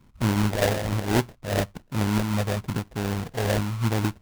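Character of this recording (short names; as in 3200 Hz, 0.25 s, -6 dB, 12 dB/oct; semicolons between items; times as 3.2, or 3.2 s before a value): phasing stages 6, 1.1 Hz, lowest notch 290–1100 Hz; aliases and images of a low sample rate 1200 Hz, jitter 20%; noise-modulated level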